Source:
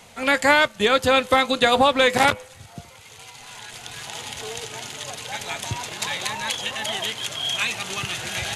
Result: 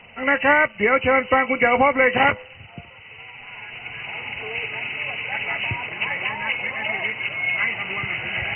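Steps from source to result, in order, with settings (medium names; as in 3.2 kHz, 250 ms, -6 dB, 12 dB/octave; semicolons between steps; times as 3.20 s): knee-point frequency compression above 1.9 kHz 4:1; 4.52–5.76 s: dynamic bell 2.3 kHz, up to +4 dB, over -39 dBFS, Q 1.3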